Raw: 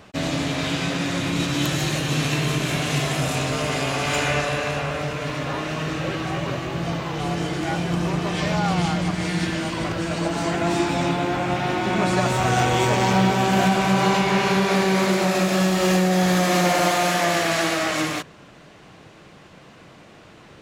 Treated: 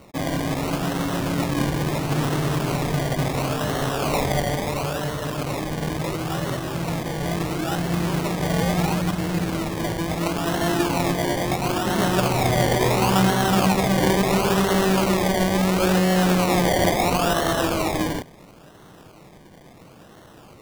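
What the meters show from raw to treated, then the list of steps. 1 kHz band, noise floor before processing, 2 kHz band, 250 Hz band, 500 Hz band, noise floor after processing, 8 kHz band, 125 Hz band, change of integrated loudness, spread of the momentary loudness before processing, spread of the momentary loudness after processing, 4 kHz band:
−1.0 dB, −47 dBFS, −3.0 dB, +0.5 dB, +0.5 dB, −47 dBFS, −1.0 dB, +0.5 dB, −0.5 dB, 8 LU, 8 LU, −2.5 dB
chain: sample-and-hold swept by an LFO 26×, swing 60% 0.73 Hz

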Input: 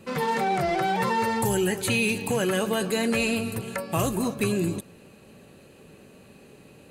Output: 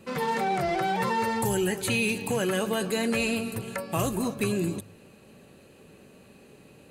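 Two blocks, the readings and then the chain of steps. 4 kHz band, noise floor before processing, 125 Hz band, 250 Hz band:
−2.0 dB, −52 dBFS, −2.5 dB, −2.0 dB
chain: hum removal 51.37 Hz, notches 3
level −2 dB

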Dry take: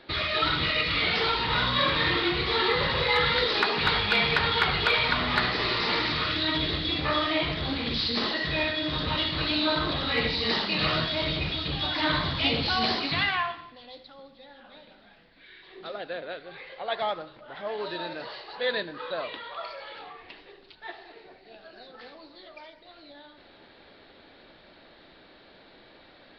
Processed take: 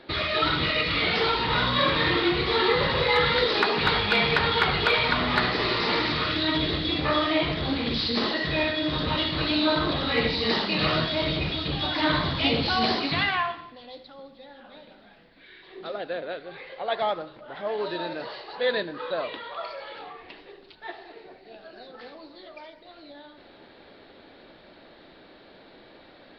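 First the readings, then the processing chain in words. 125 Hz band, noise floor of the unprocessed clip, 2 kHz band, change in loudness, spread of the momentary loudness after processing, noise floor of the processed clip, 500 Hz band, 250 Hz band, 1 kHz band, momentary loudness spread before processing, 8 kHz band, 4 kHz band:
+2.5 dB, −54 dBFS, +1.0 dB, +1.5 dB, 16 LU, −52 dBFS, +4.0 dB, +4.0 dB, +2.0 dB, 16 LU, can't be measured, +0.5 dB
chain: parametric band 350 Hz +4.5 dB 3 octaves

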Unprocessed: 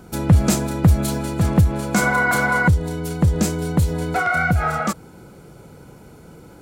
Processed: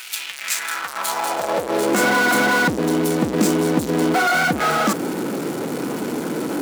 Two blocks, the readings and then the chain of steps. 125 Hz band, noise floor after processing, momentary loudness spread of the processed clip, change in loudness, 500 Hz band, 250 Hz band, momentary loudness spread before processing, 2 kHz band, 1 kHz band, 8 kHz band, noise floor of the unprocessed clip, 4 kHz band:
−12.0 dB, −31 dBFS, 9 LU, −1.0 dB, +5.5 dB, +1.5 dB, 6 LU, +1.5 dB, +2.5 dB, +3.0 dB, −45 dBFS, +7.5 dB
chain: power curve on the samples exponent 0.35
high-pass filter sweep 2,700 Hz → 270 Hz, 0:00.28–0:02.12
level −7.5 dB

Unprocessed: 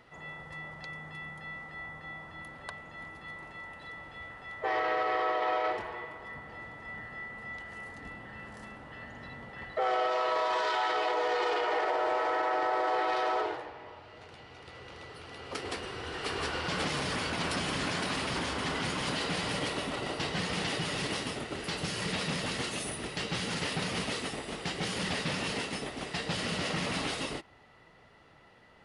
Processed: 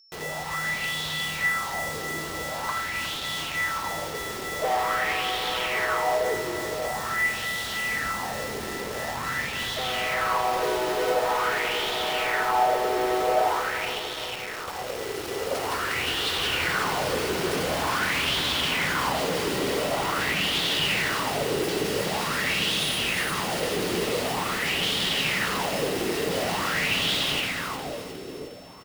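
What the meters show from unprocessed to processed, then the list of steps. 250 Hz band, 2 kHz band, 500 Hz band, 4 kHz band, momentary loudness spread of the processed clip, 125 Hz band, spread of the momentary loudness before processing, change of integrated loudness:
+5.0 dB, +9.5 dB, +7.0 dB, +10.0 dB, 8 LU, +3.5 dB, 15 LU, +7.0 dB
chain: in parallel at 0 dB: downward compressor, threshold −43 dBFS, peak gain reduction 16 dB
on the sum: single-tap delay 83 ms −9.5 dB
log-companded quantiser 2 bits
steady tone 5,400 Hz −48 dBFS
on a send: echo with a time of its own for lows and highs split 570 Hz, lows 545 ms, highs 358 ms, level −3 dB
on the sum: auto-filter bell 0.46 Hz 370–3,500 Hz +13 dB
level −6 dB

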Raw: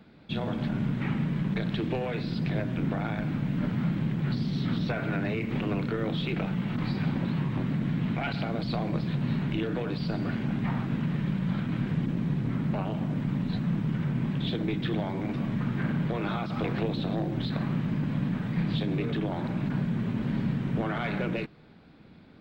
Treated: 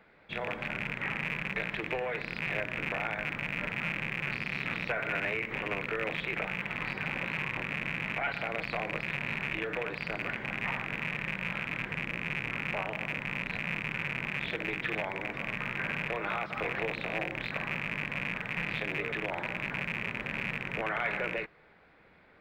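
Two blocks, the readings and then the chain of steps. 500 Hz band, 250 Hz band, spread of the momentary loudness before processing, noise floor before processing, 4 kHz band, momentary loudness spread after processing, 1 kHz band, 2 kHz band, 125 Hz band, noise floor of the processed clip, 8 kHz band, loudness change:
−2.5 dB, −14.0 dB, 2 LU, −52 dBFS, −0.5 dB, 2 LU, +0.5 dB, +9.0 dB, −14.0 dB, −60 dBFS, can't be measured, −3.5 dB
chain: loose part that buzzes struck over −29 dBFS, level −22 dBFS
graphic EQ with 10 bands 125 Hz −7 dB, 250 Hz −9 dB, 500 Hz +6 dB, 1,000 Hz +4 dB, 2,000 Hz +12 dB, 4,000 Hz −5 dB
level −6.5 dB

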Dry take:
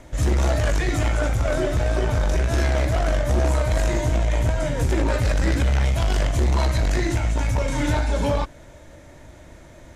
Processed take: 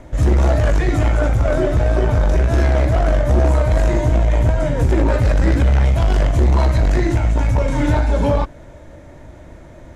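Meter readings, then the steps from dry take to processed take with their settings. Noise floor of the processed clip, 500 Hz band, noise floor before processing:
−40 dBFS, +5.5 dB, −45 dBFS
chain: high-shelf EQ 2,100 Hz −10.5 dB
level +6 dB

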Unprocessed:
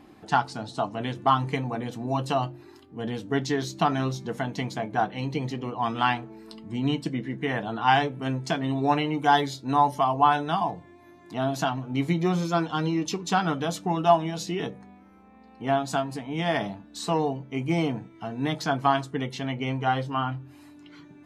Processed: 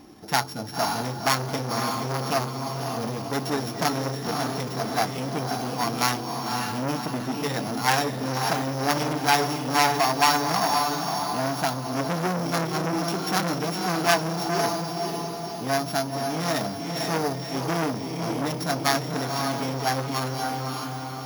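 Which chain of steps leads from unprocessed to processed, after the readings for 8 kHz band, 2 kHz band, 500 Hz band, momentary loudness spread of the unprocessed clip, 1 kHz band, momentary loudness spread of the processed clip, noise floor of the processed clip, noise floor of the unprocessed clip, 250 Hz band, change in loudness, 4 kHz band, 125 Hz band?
+10.5 dB, +3.0 dB, +1.0 dB, 10 LU, 0.0 dB, 7 LU, −33 dBFS, −52 dBFS, 0.0 dB, +1.0 dB, +6.0 dB, 0.0 dB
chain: samples sorted by size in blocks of 8 samples
feedback delay with all-pass diffusion 543 ms, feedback 50%, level −5 dB
saturating transformer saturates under 2,800 Hz
level +3 dB

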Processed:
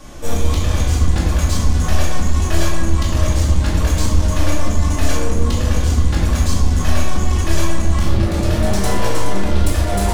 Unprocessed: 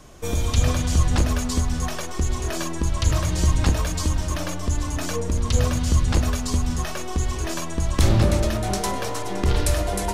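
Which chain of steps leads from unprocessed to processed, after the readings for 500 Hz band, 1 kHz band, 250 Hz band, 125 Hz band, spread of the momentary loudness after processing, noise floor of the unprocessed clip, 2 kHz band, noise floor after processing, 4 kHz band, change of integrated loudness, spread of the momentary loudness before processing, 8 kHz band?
+4.0 dB, +4.5 dB, +5.0 dB, +5.5 dB, 3 LU, −29 dBFS, +5.0 dB, −19 dBFS, +3.5 dB, +5.0 dB, 7 LU, +2.5 dB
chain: downward compressor, threshold −19 dBFS, peak gain reduction 8 dB
soft clipping −25.5 dBFS, distortion −10 dB
rectangular room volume 440 cubic metres, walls mixed, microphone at 2.4 metres
level +4 dB

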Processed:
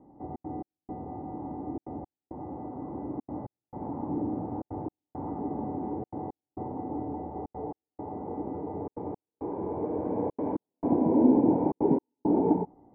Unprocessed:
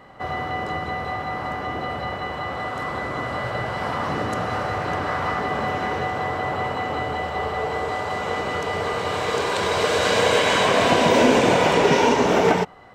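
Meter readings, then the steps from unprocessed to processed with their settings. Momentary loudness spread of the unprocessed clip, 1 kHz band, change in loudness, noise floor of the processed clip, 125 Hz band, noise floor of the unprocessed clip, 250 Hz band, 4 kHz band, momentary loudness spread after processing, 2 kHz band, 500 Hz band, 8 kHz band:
11 LU, −15.0 dB, −9.0 dB, below −85 dBFS, −9.0 dB, −31 dBFS, −1.0 dB, below −40 dB, 16 LU, below −40 dB, −11.5 dB, below −40 dB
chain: formant resonators in series u
notch filter 2,200 Hz, Q 17
gate pattern "xxxx.xx...xxxxxx" 169 BPM −60 dB
high-frequency loss of the air 390 metres
level +5 dB

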